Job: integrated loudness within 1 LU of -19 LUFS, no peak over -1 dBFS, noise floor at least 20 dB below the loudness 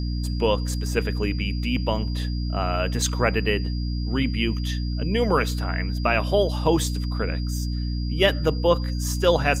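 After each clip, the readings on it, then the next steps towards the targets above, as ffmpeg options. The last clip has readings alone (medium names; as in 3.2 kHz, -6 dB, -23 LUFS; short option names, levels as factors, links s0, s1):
hum 60 Hz; highest harmonic 300 Hz; hum level -24 dBFS; steady tone 4.8 kHz; tone level -40 dBFS; loudness -24.0 LUFS; peak level -5.0 dBFS; loudness target -19.0 LUFS
-> -af "bandreject=f=60:t=h:w=4,bandreject=f=120:t=h:w=4,bandreject=f=180:t=h:w=4,bandreject=f=240:t=h:w=4,bandreject=f=300:t=h:w=4"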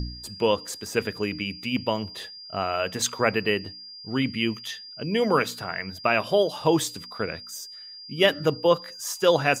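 hum not found; steady tone 4.8 kHz; tone level -40 dBFS
-> -af "bandreject=f=4800:w=30"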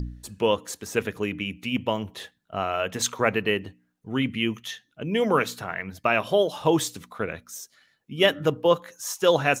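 steady tone not found; loudness -25.5 LUFS; peak level -5.0 dBFS; loudness target -19.0 LUFS
-> -af "volume=2.11,alimiter=limit=0.891:level=0:latency=1"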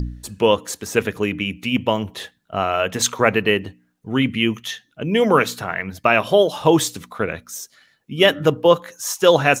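loudness -19.5 LUFS; peak level -1.0 dBFS; noise floor -65 dBFS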